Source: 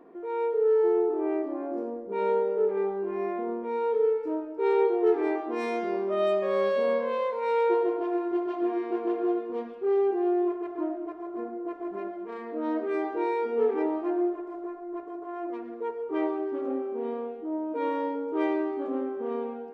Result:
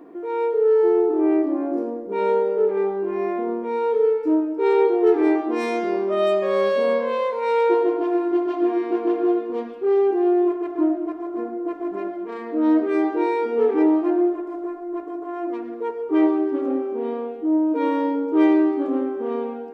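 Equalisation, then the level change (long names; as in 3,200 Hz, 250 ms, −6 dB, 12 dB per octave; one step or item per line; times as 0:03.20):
parametric band 300 Hz +10.5 dB 0.22 octaves
high-shelf EQ 4,000 Hz +6 dB
+5.0 dB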